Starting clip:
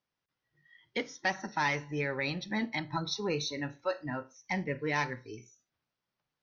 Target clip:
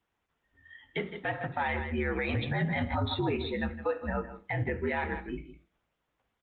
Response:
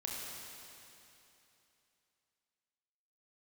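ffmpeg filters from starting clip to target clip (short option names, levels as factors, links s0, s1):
-filter_complex "[0:a]highshelf=f=2400:g=-4.5,bandreject=f=50:t=h:w=6,bandreject=f=100:t=h:w=6,bandreject=f=150:t=h:w=6,bandreject=f=200:t=h:w=6,bandreject=f=250:t=h:w=6,bandreject=f=300:t=h:w=6,bandreject=f=350:t=h:w=6,bandreject=f=400:t=h:w=6,bandreject=f=450:t=h:w=6,aecho=1:1:159:0.188,asplit=2[s0][s1];[1:a]atrim=start_sample=2205,afade=t=out:st=0.15:d=0.01,atrim=end_sample=7056[s2];[s1][s2]afir=irnorm=-1:irlink=0,volume=0.141[s3];[s0][s3]amix=inputs=2:normalize=0,flanger=delay=7.5:depth=5.2:regen=-54:speed=0.52:shape=sinusoidal,asplit=2[s4][s5];[s5]acompressor=threshold=0.00282:ratio=6,volume=1.19[s6];[s4][s6]amix=inputs=2:normalize=0,afreqshift=-65,aresample=8000,aresample=44100,asettb=1/sr,asplit=3[s7][s8][s9];[s7]atrim=end=2.294[s10];[s8]atrim=start=2.29:end=3.37,asetpts=PTS-STARTPTS,afade=t=in:d=0.004:c=qsin,afade=t=out:st=1.076:d=0.004:c=qsin,acontrast=56[s11];[s9]atrim=start=3.366[s12];[s10][s11]acrossfade=d=0.004:c1=hsin:c2=qsin[s13];[s13][s12]acrossfade=d=0.004:c1=qsin:c2=hsin,alimiter=level_in=1.68:limit=0.0631:level=0:latency=1:release=73,volume=0.596,adynamicequalizer=threshold=0.00126:dfrequency=560:dqfactor=4.9:tfrequency=560:tqfactor=4.9:attack=5:release=100:ratio=0.375:range=2:mode=boostabove:tftype=bell,volume=2.24" -ar 48000 -c:a libopus -b:a 24k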